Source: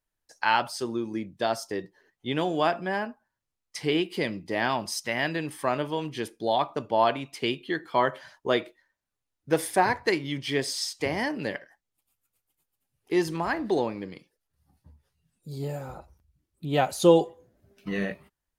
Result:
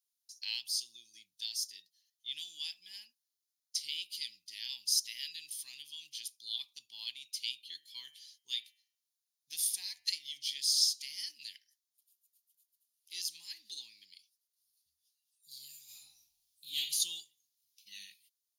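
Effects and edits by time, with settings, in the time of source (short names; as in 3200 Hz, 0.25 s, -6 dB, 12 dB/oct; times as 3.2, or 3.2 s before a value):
7.61–10.56 de-hum 145.9 Hz, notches 22
15.84–16.76 reverb throw, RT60 0.84 s, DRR -10.5 dB
whole clip: inverse Chebyshev high-pass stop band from 1500 Hz, stop band 50 dB; notch 7900 Hz, Q 5.1; gain +4.5 dB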